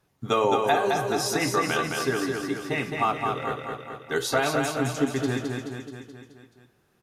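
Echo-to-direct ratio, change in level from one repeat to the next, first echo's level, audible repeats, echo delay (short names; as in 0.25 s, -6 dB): -2.0 dB, -4.5 dB, -4.0 dB, 6, 0.214 s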